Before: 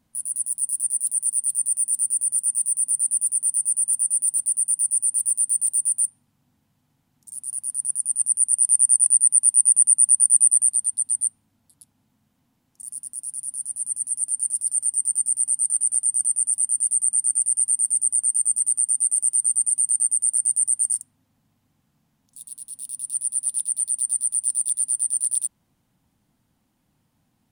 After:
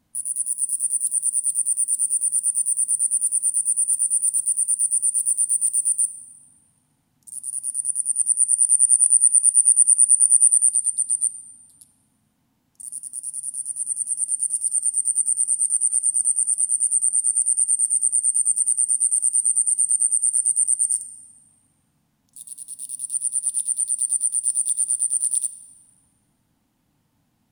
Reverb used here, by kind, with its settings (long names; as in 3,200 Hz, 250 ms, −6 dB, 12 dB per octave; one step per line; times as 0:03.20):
feedback delay network reverb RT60 1.6 s, high-frequency decay 0.8×, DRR 12 dB
level +1 dB